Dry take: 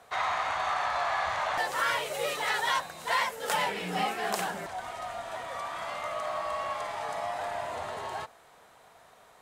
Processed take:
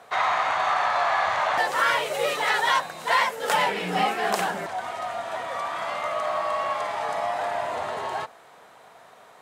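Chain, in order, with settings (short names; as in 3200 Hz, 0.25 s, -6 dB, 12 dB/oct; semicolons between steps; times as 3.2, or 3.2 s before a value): Bessel high-pass 150 Hz, order 2; high shelf 4600 Hz -6 dB; gain +7 dB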